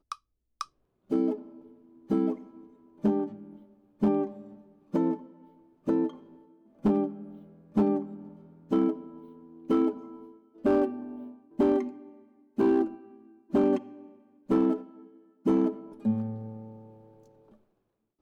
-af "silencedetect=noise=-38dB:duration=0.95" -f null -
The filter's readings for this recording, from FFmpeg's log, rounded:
silence_start: 16.72
silence_end: 18.21 | silence_duration: 1.49